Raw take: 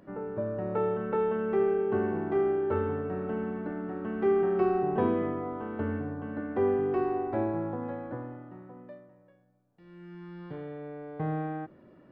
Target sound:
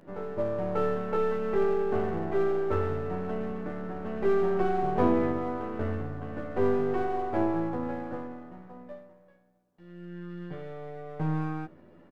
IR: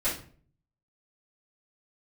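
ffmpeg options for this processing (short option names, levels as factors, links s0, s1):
-filter_complex "[0:a]aeval=exprs='if(lt(val(0),0),0.447*val(0),val(0))':c=same,asplit=2[s0][s1];[s1]adelay=12,volume=0.708[s2];[s0][s2]amix=inputs=2:normalize=0,volume=1.26"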